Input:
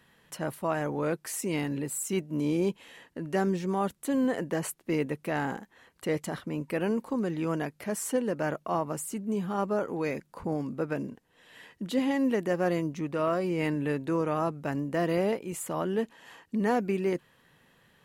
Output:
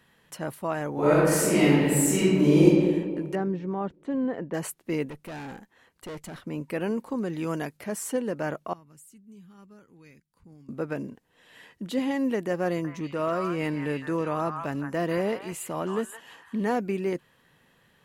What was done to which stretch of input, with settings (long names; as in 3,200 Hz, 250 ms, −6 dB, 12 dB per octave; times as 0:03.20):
0:00.93–0:02.64: thrown reverb, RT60 1.8 s, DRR −11 dB
0:03.35–0:04.54: head-to-tape spacing loss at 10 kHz 33 dB
0:05.09–0:06.46: tube saturation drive 35 dB, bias 0.55
0:07.33–0:07.77: high-shelf EQ 4,500 Hz +7.5 dB
0:08.73–0:10.69: guitar amp tone stack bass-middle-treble 6-0-2
0:12.68–0:16.78: echo through a band-pass that steps 163 ms, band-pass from 1,300 Hz, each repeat 1.4 octaves, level −1 dB